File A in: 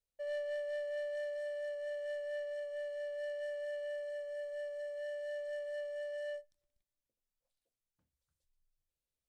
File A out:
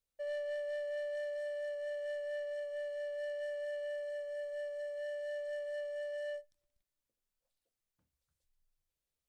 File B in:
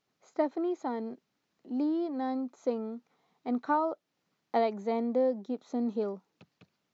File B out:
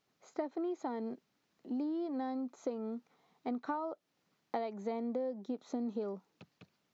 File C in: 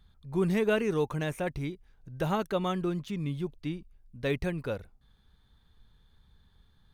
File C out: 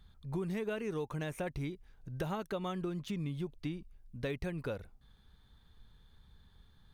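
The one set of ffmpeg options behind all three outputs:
-af "acompressor=threshold=-35dB:ratio=6,volume=1dB"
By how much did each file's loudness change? +0.5, -7.0, -7.5 LU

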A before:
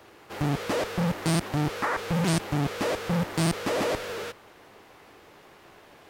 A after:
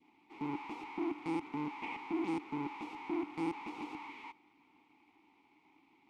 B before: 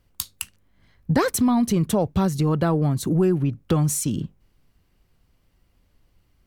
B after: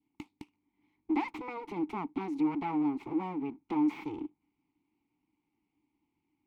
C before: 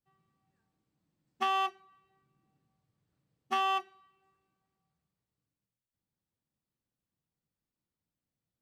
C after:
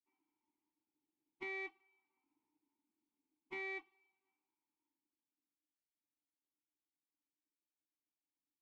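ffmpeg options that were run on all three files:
-filter_complex "[0:a]aeval=exprs='abs(val(0))':c=same,asplit=3[a][b][c];[a]bandpass=f=300:t=q:w=8,volume=0dB[d];[b]bandpass=f=870:t=q:w=8,volume=-6dB[e];[c]bandpass=f=2.24k:t=q:w=8,volume=-9dB[f];[d][e][f]amix=inputs=3:normalize=0,adynamicequalizer=threshold=0.00126:dfrequency=1400:dqfactor=1.5:tfrequency=1400:tqfactor=1.5:attack=5:release=100:ratio=0.375:range=3:mode=boostabove:tftype=bell,volume=2.5dB"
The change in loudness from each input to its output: -12.5, -11.5, -13.0 LU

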